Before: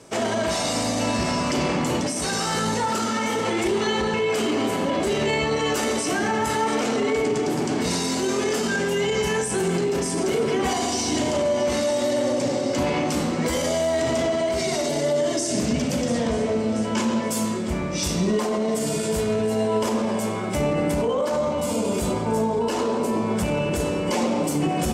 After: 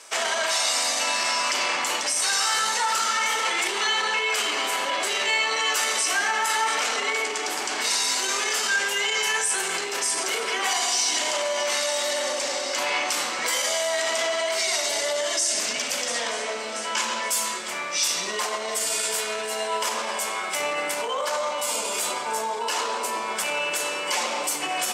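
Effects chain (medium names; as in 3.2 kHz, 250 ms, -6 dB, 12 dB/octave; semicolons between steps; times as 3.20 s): high-pass 1.2 kHz 12 dB/octave; in parallel at +2.5 dB: peak limiter -23.5 dBFS, peak gain reduction 8 dB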